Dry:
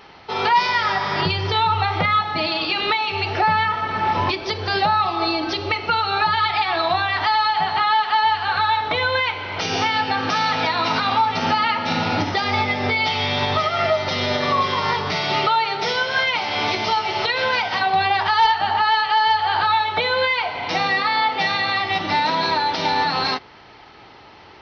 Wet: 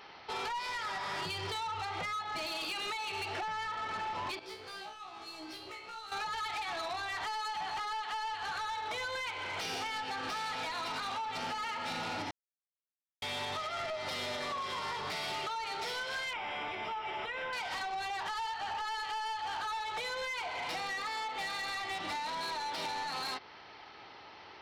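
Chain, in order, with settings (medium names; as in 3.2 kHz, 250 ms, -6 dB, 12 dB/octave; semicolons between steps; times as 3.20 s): bass shelf 300 Hz -10 dB; compression 12:1, threshold -24 dBFS, peak gain reduction 11.5 dB; saturation -28 dBFS, distortion -11 dB; 4.39–6.12 s: feedback comb 63 Hz, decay 0.34 s, harmonics all, mix 100%; 12.31–13.22 s: mute; 16.33–17.53 s: Savitzky-Golay filter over 25 samples; trim -5.5 dB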